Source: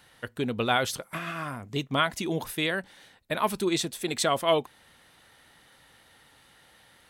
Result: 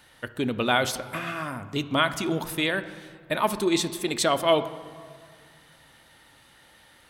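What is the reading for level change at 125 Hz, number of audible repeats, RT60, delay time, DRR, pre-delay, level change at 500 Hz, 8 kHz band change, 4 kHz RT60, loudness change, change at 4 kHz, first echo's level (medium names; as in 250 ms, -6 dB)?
+1.0 dB, no echo, 2.0 s, no echo, 10.0 dB, 3 ms, +2.5 dB, +2.0 dB, 1.3 s, +2.5 dB, +2.5 dB, no echo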